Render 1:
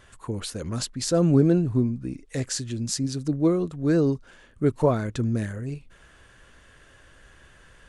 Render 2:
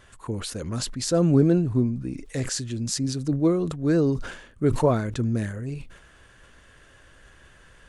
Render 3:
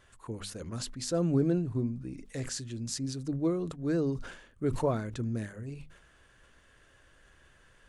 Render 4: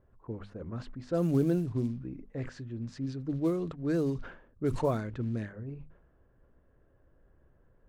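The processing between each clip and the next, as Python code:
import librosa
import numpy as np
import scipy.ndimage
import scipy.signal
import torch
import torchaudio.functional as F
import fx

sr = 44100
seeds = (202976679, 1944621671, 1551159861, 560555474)

y1 = fx.sustainer(x, sr, db_per_s=78.0)
y2 = fx.hum_notches(y1, sr, base_hz=50, count=5)
y2 = y2 * librosa.db_to_amplitude(-8.0)
y3 = fx.quant_float(y2, sr, bits=4)
y3 = fx.env_lowpass(y3, sr, base_hz=560.0, full_db=-24.0)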